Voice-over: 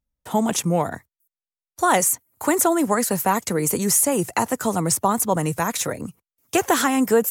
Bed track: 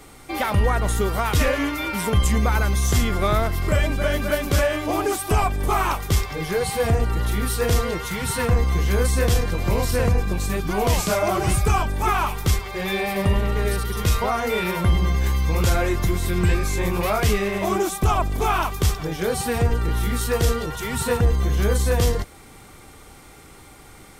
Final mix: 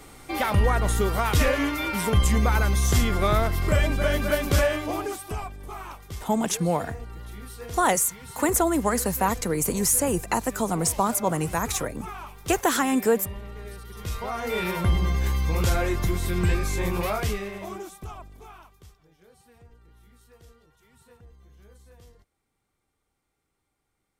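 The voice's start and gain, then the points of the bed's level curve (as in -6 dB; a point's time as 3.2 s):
5.95 s, -3.5 dB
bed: 4.67 s -1.5 dB
5.61 s -17 dB
13.81 s -17 dB
14.6 s -3.5 dB
17 s -3.5 dB
19.01 s -33 dB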